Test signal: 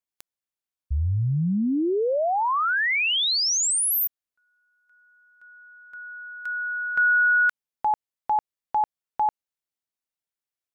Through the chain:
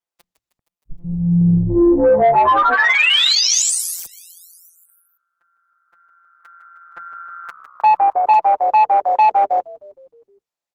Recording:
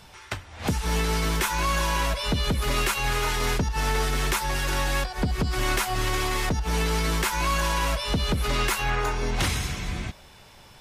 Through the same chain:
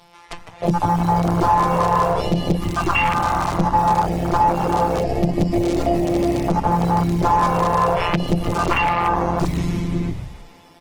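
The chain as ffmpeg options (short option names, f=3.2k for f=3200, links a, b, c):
-filter_complex "[0:a]afftfilt=real='hypot(re,im)*cos(PI*b)':imag='0':win_size=1024:overlap=0.75,asplit=2[a][b];[b]asplit=7[c][d][e][f][g][h][i];[c]adelay=156,afreqshift=-66,volume=-12dB[j];[d]adelay=312,afreqshift=-132,volume=-16dB[k];[e]adelay=468,afreqshift=-198,volume=-20dB[l];[f]adelay=624,afreqshift=-264,volume=-24dB[m];[g]adelay=780,afreqshift=-330,volume=-28.1dB[n];[h]adelay=936,afreqshift=-396,volume=-32.1dB[o];[i]adelay=1092,afreqshift=-462,volume=-36.1dB[p];[j][k][l][m][n][o][p]amix=inputs=7:normalize=0[q];[a][q]amix=inputs=2:normalize=0,aeval=exprs='(mod(5.01*val(0)+1,2)-1)/5.01':c=same,equalizer=f=1.5k:w=5.4:g=-7.5,bandreject=f=60:t=h:w=6,bandreject=f=120:t=h:w=6,bandreject=f=180:t=h:w=6,afwtdn=0.0251,acompressor=threshold=-38dB:ratio=1.5:attack=29:release=97:knee=6:detection=rms,equalizer=f=730:w=0.55:g=8,asoftclip=type=tanh:threshold=-19.5dB,acrossover=split=8900[r][s];[s]acompressor=threshold=-57dB:ratio=4:attack=1:release=60[t];[r][t]amix=inputs=2:normalize=0,alimiter=level_in=23dB:limit=-1dB:release=50:level=0:latency=1,volume=-6.5dB" -ar 48000 -c:a libopus -b:a 16k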